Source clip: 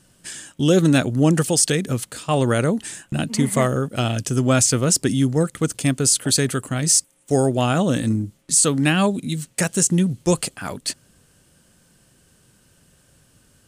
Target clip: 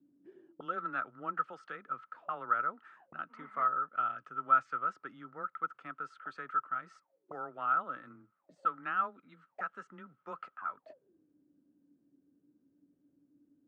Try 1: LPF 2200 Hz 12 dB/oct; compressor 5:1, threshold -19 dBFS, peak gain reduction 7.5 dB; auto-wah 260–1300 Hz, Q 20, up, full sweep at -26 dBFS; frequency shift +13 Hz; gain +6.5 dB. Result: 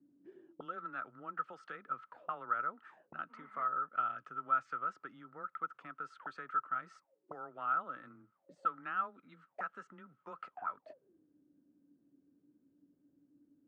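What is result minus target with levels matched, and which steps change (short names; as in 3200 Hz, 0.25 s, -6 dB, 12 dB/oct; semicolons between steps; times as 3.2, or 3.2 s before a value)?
compressor: peak gain reduction +7.5 dB
remove: compressor 5:1, threshold -19 dBFS, peak gain reduction 7.5 dB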